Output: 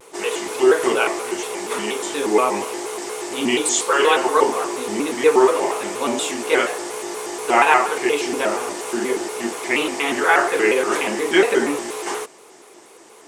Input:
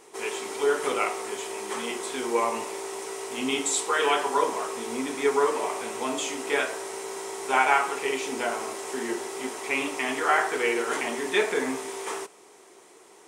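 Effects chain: dynamic EQ 410 Hz, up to +3 dB, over -34 dBFS, Q 2; shaped vibrato square 4.2 Hz, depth 160 cents; gain +6.5 dB

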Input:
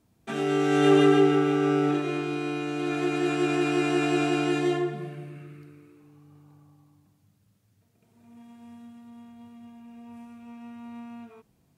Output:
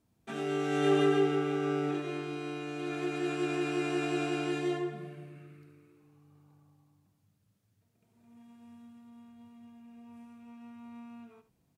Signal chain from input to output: echo 73 ms -13.5 dB; gain -7 dB

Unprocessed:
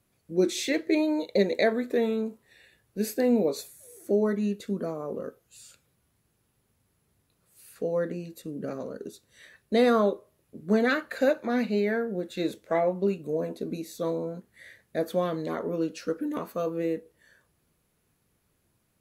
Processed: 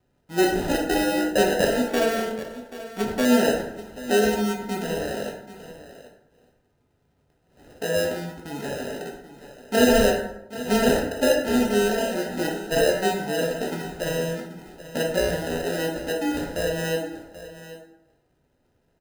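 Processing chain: 14.36–15.02 small resonant body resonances 240/2100 Hz, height 10 dB; sample-and-hold 39×; on a send: echo 0.783 s -15 dB; on the sum: plate-style reverb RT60 0.82 s, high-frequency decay 0.6×, DRR -1 dB; 1.88–3.25 running maximum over 5 samples

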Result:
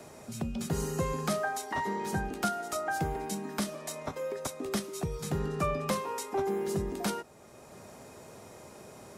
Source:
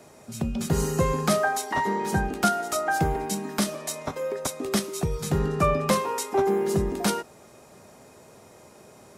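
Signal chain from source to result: three-band squash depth 40%; gain -7.5 dB

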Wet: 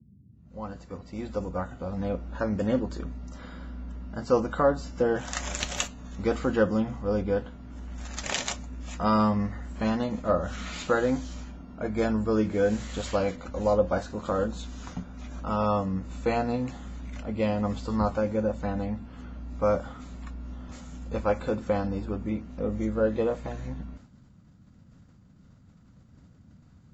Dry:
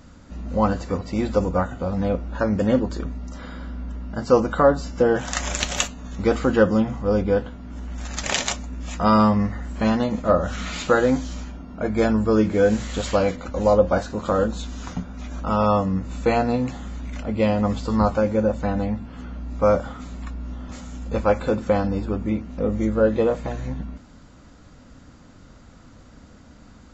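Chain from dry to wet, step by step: opening faded in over 2.28 s; expander -39 dBFS; band noise 60–220 Hz -49 dBFS; gain -6.5 dB

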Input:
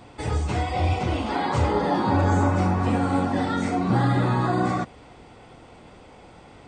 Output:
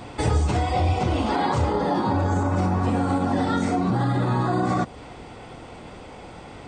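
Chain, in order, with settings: dynamic EQ 2200 Hz, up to -4 dB, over -45 dBFS, Q 1.3; in parallel at -0.5 dB: compressor, threshold -28 dBFS, peak gain reduction 11 dB; on the sum: limiter -13.5 dBFS, peak gain reduction 6.5 dB; vocal rider 0.5 s

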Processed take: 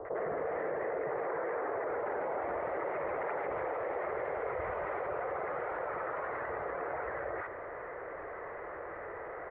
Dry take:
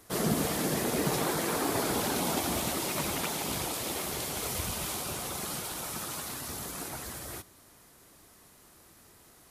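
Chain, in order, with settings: Chebyshev low-pass 2000 Hz, order 5; resonant low shelf 340 Hz -13.5 dB, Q 3; limiter -27.5 dBFS, peak gain reduction 9.5 dB; bands offset in time lows, highs 50 ms, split 940 Hz; fast leveller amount 70%

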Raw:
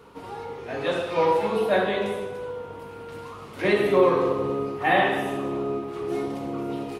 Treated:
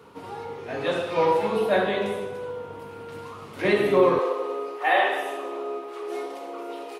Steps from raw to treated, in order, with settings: HPF 74 Hz 24 dB/oct, from 4.19 s 410 Hz

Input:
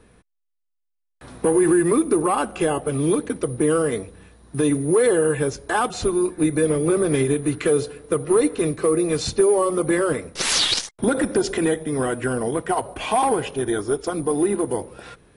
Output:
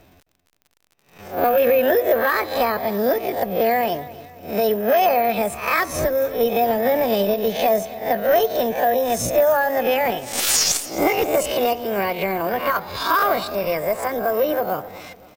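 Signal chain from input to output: spectral swells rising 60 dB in 0.43 s; pitch shift +7 st; on a send: feedback echo 0.265 s, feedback 44%, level -18.5 dB; on the sum: crackle 48/s -39 dBFS

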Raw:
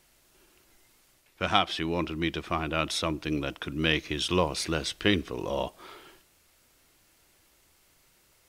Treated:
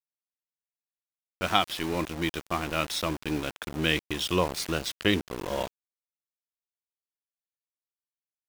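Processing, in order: sample gate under -32.5 dBFS; mismatched tape noise reduction decoder only

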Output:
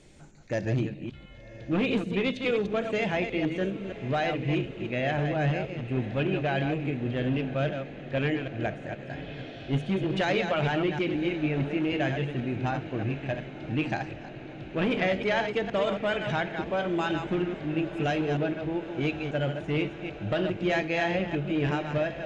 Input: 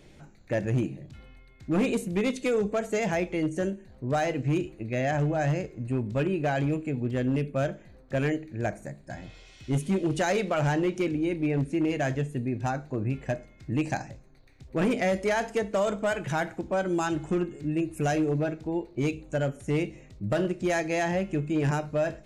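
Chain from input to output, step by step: reverse delay 0.157 s, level -6.5 dB; low-pass sweep 8400 Hz -> 3300 Hz, 0.21–1.01; diffused feedback echo 1.057 s, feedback 75%, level -15.5 dB; gain -2 dB

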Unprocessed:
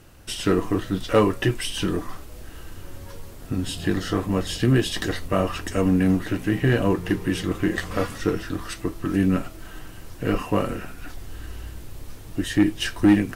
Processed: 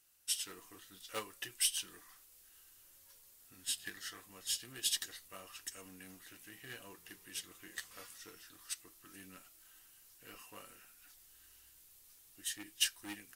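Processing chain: 1.9–4.22 dynamic EQ 1800 Hz, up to +8 dB, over -49 dBFS, Q 2; hard clip -11 dBFS, distortion -26 dB; pre-emphasis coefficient 0.97; notch 620 Hz, Q 18; upward expander 2.5:1, over -40 dBFS; gain +3.5 dB

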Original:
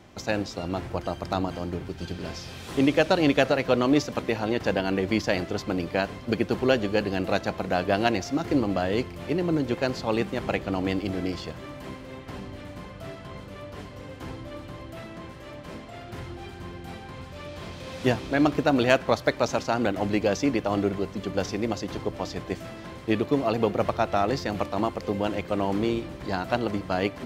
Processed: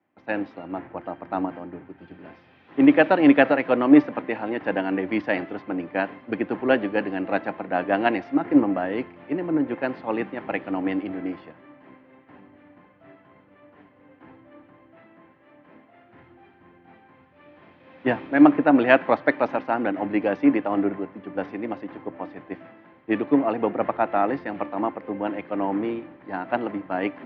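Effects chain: speaker cabinet 220–2500 Hz, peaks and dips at 290 Hz +7 dB, 410 Hz -3 dB, 850 Hz +4 dB, 1800 Hz +4 dB; three-band expander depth 70%

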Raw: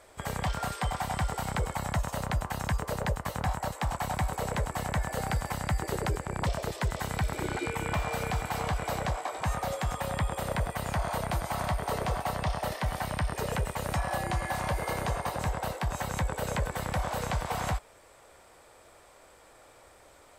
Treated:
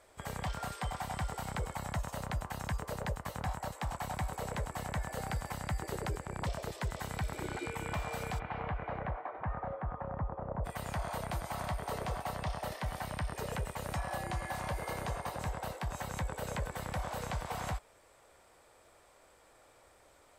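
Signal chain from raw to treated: 8.38–10.64 LPF 2900 Hz -> 1100 Hz 24 dB/oct; gain -6.5 dB

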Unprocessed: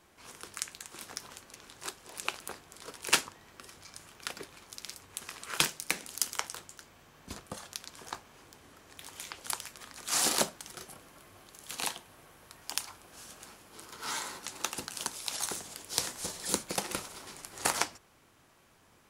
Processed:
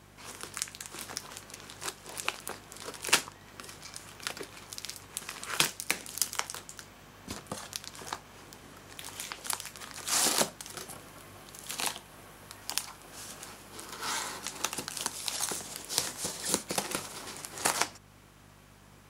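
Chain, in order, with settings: in parallel at -1.5 dB: compressor, threshold -43 dBFS, peak gain reduction 22 dB; on the sum: hum 50 Hz, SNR 17 dB; HPF 82 Hz 12 dB/oct

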